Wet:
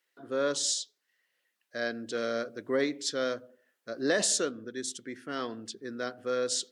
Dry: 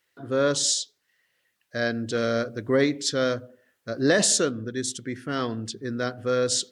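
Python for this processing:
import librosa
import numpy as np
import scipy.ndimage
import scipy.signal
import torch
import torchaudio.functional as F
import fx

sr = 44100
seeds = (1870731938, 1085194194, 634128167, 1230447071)

y = scipy.signal.sosfilt(scipy.signal.butter(2, 250.0, 'highpass', fs=sr, output='sos'), x)
y = F.gain(torch.from_numpy(y), -6.0).numpy()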